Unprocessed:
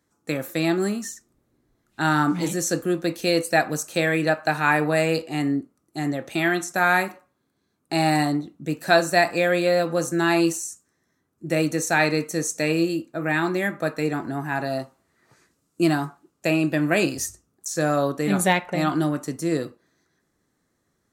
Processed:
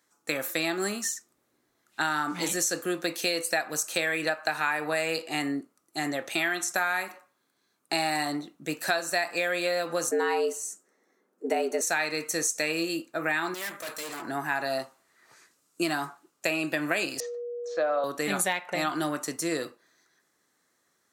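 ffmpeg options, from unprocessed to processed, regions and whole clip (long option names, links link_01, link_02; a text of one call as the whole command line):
ffmpeg -i in.wav -filter_complex "[0:a]asettb=1/sr,asplit=3[link_01][link_02][link_03];[link_01]atrim=end=10.114[link_04];[link_02]atrim=start=10.11:end=11.81,asetpts=PTS-STARTPTS,afade=type=in:duration=0.004:curve=qsin,afade=type=out:start_time=1.696:duration=0.004:curve=qsin,tiltshelf=frequency=1200:gain=7,afreqshift=110[link_05];[link_03]atrim=start=11.806[link_06];[link_04][link_05]acrossfade=duration=0.004:curve1=hsin:curve2=qsin[link_07];[link_07][link_06]acrossfade=duration=0.004:curve1=qsin:curve2=hsin,asettb=1/sr,asplit=3[link_08][link_09][link_10];[link_08]atrim=end=13.544[link_11];[link_09]atrim=start=13.54:end=14.22,asetpts=PTS-STARTPTS,afade=type=in:duration=0.004:curve=qsin,afade=type=out:start_time=0.676:duration=0.004:curve=qsin,bass=frequency=250:gain=-1,treble=frequency=4000:gain=13,aeval=exprs='(tanh(56.2*val(0)+0.5)-tanh(0.5))/56.2':channel_layout=same[link_12];[link_10]atrim=start=14.216[link_13];[link_11][link_12]acrossfade=duration=0.004:curve1=hsin:curve2=qsin[link_14];[link_14][link_13]acrossfade=duration=0.004:curve1=qsin:curve2=hsin,asettb=1/sr,asplit=3[link_15][link_16][link_17];[link_15]atrim=end=17.204[link_18];[link_16]atrim=start=17.2:end=18.04,asetpts=PTS-STARTPTS,afade=type=in:duration=0.004:curve=qsin,afade=type=out:start_time=0.836:duration=0.004:curve=qsin,agate=range=-33dB:threshold=-59dB:ratio=3:release=100:detection=peak,aeval=exprs='val(0)+0.0355*sin(2*PI*480*n/s)':channel_layout=same,highpass=380,equalizer=frequency=400:width_type=q:width=4:gain=-5,equalizer=frequency=620:width_type=q:width=4:gain=9,equalizer=frequency=1800:width_type=q:width=4:gain=-7,equalizer=frequency=2600:width_type=q:width=4:gain=-6,lowpass=frequency=3200:width=0.5412,lowpass=frequency=3200:width=1.3066[link_19];[link_17]atrim=start=18.036[link_20];[link_18][link_19]acrossfade=duration=0.004:curve1=hsin:curve2=qsin[link_21];[link_21][link_20]acrossfade=duration=0.004:curve1=qsin:curve2=hsin,highpass=frequency=1000:poles=1,acompressor=threshold=-29dB:ratio=6,volume=5dB" out.wav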